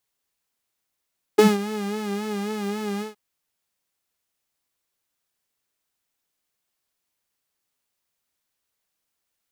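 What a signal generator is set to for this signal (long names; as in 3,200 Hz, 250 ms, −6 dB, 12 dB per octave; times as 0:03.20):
subtractive patch with vibrato G#4, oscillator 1 saw, interval 0 semitones, detune 22 cents, sub −13 dB, filter highpass, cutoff 120 Hz, Q 7.7, filter envelope 1.5 octaves, filter decay 0.09 s, attack 13 ms, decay 0.18 s, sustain −15.5 dB, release 0.14 s, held 1.63 s, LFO 3.7 Hz, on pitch 68 cents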